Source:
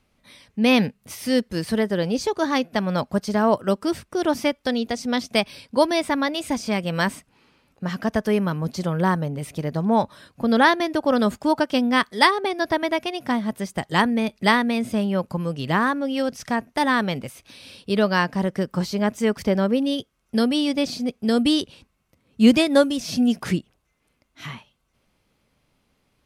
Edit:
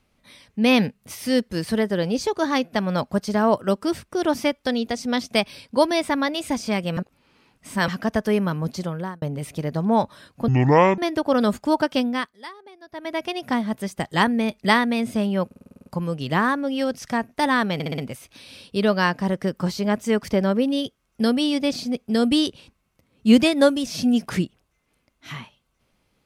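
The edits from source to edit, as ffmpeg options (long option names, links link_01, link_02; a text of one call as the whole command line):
ffmpeg -i in.wav -filter_complex "[0:a]asplit=20[link_01][link_02][link_03][link_04][link_05][link_06][link_07][link_08][link_09][link_10][link_11][link_12][link_13][link_14][link_15][link_16][link_17][link_18][link_19][link_20];[link_01]atrim=end=6.972[link_21];[link_02]atrim=start=6.968:end=7.882,asetpts=PTS-STARTPTS,areverse[link_22];[link_03]atrim=start=7.878:end=9.22,asetpts=PTS-STARTPTS,afade=type=out:start_time=0.832:duration=0.51[link_23];[link_04]atrim=start=9.22:end=10.484,asetpts=PTS-STARTPTS,afade=type=in:duration=0.004:curve=hsin[link_24];[link_05]atrim=start=10.48:end=10.76,asetpts=PTS-STARTPTS,asetrate=24696,aresample=44100[link_25];[link_06]atrim=start=10.756:end=12.14,asetpts=PTS-STARTPTS,afade=type=out:start_time=0.974:duration=0.41:silence=0.0794328[link_26];[link_07]atrim=start=12.14:end=12.69,asetpts=PTS-STARTPTS,volume=-22dB[link_27];[link_08]atrim=start=12.69:end=15.292,asetpts=PTS-STARTPTS,afade=type=in:duration=0.41:silence=0.0794328[link_28];[link_09]atrim=start=15.238:end=15.292[link_29];[link_10]atrim=start=15.238:end=15.292[link_30];[link_11]atrim=start=15.238:end=15.292[link_31];[link_12]atrim=start=15.238:end=15.292[link_32];[link_13]atrim=start=15.238:end=15.292[link_33];[link_14]atrim=start=15.238:end=15.292[link_34];[link_15]atrim=start=15.238:end=15.292[link_35];[link_16]atrim=start=15.238:end=17.182[link_36];[link_17]atrim=start=17.118:end=17.182[link_37];[link_18]atrim=start=17.118:end=17.182[link_38];[link_19]atrim=start=17.118:end=17.182[link_39];[link_20]atrim=start=17.118[link_40];[link_21][link_22]acrossfade=duration=0.004:curve1=hsin:curve2=hsin[link_41];[link_23][link_24]concat=n=2:v=0:a=1[link_42];[link_41][link_42]acrossfade=duration=0.004:curve1=hsin:curve2=hsin[link_43];[link_43][link_25]acrossfade=duration=0.004:curve1=hsin:curve2=hsin[link_44];[link_26][link_27][link_28]concat=n=3:v=0:a=1[link_45];[link_44][link_45]acrossfade=duration=0.004:curve1=hsin:curve2=hsin[link_46];[link_46][link_29]acrossfade=duration=0.004:curve1=hsin:curve2=hsin[link_47];[link_47][link_30]acrossfade=duration=0.004:curve1=hsin:curve2=hsin[link_48];[link_48][link_31]acrossfade=duration=0.004:curve1=hsin:curve2=hsin[link_49];[link_49][link_32]acrossfade=duration=0.004:curve1=hsin:curve2=hsin[link_50];[link_50][link_33]acrossfade=duration=0.004:curve1=hsin:curve2=hsin[link_51];[link_51][link_34]acrossfade=duration=0.004:curve1=hsin:curve2=hsin[link_52];[link_52][link_35]acrossfade=duration=0.004:curve1=hsin:curve2=hsin[link_53];[link_53][link_36]acrossfade=duration=0.004:curve1=hsin:curve2=hsin[link_54];[link_54][link_37]acrossfade=duration=0.004:curve1=hsin:curve2=hsin[link_55];[link_55][link_38]acrossfade=duration=0.004:curve1=hsin:curve2=hsin[link_56];[link_56][link_39]acrossfade=duration=0.004:curve1=hsin:curve2=hsin[link_57];[link_57][link_40]acrossfade=duration=0.004:curve1=hsin:curve2=hsin" out.wav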